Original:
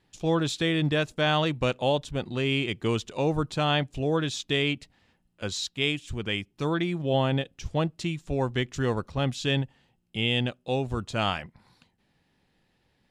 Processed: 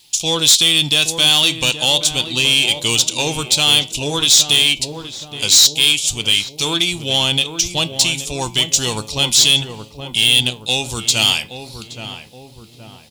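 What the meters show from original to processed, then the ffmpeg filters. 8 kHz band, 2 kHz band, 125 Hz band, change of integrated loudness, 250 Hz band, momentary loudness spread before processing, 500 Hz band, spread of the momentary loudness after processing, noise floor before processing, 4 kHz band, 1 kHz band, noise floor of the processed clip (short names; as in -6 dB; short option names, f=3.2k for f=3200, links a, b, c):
+28.0 dB, +11.0 dB, +1.5 dB, +14.0 dB, +1.5 dB, 6 LU, +1.5 dB, 12 LU, -71 dBFS, +20.0 dB, +4.0 dB, -41 dBFS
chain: -filter_complex "[0:a]bandreject=f=1.8k:w=15,aexciter=amount=6.8:drive=7.6:freq=2.5k,equalizer=f=900:t=o:w=0.47:g=6.5,asplit=2[a][b];[b]alimiter=limit=-10dB:level=0:latency=1:release=100,volume=-2dB[c];[a][c]amix=inputs=2:normalize=0,flanger=delay=7.9:depth=1.4:regen=82:speed=0.39:shape=sinusoidal,asoftclip=type=tanh:threshold=-12.5dB,highshelf=f=2.7k:g=9,asplit=2[d][e];[e]adelay=822,lowpass=f=1.1k:p=1,volume=-7.5dB,asplit=2[f][g];[g]adelay=822,lowpass=f=1.1k:p=1,volume=0.53,asplit=2[h][i];[i]adelay=822,lowpass=f=1.1k:p=1,volume=0.53,asplit=2[j][k];[k]adelay=822,lowpass=f=1.1k:p=1,volume=0.53,asplit=2[l][m];[m]adelay=822,lowpass=f=1.1k:p=1,volume=0.53,asplit=2[n][o];[o]adelay=822,lowpass=f=1.1k:p=1,volume=0.53[p];[f][h][j][l][n][p]amix=inputs=6:normalize=0[q];[d][q]amix=inputs=2:normalize=0,volume=1.5dB"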